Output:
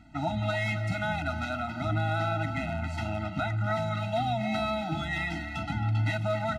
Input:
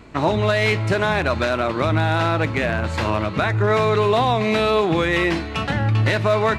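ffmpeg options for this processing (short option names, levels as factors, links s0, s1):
-filter_complex "[0:a]asplit=2[s0][s1];[s1]adelay=270,highpass=300,lowpass=3400,asoftclip=type=hard:threshold=0.178,volume=0.398[s2];[s0][s2]amix=inputs=2:normalize=0,afftfilt=real='re*eq(mod(floor(b*sr/1024/310),2),0)':imag='im*eq(mod(floor(b*sr/1024/310),2),0)':win_size=1024:overlap=0.75,volume=0.376"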